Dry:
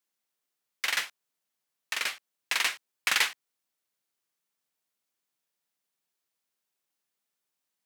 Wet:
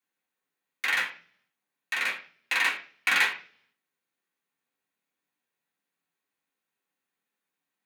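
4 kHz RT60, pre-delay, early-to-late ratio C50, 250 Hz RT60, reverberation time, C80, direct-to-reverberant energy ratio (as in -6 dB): 0.50 s, 3 ms, 11.5 dB, 0.70 s, 0.45 s, 16.0 dB, -4.0 dB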